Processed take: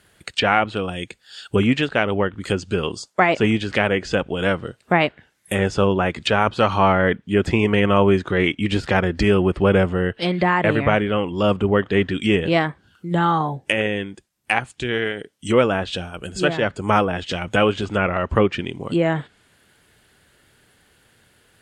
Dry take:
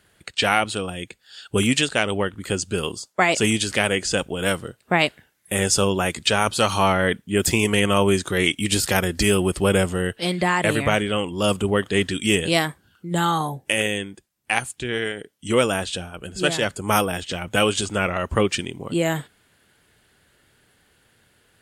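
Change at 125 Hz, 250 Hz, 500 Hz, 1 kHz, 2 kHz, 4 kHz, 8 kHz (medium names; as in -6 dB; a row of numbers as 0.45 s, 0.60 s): +3.0 dB, +3.0 dB, +3.0 dB, +3.0 dB, +0.5 dB, -3.5 dB, -14.5 dB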